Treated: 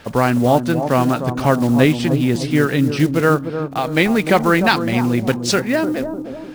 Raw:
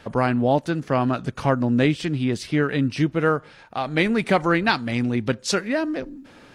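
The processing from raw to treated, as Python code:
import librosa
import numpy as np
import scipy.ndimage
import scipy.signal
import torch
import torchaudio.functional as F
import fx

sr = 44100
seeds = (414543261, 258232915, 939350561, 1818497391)

y = fx.block_float(x, sr, bits=5)
y = fx.echo_bbd(y, sr, ms=301, stages=2048, feedback_pct=47, wet_db=-8)
y = F.gain(torch.from_numpy(y), 5.0).numpy()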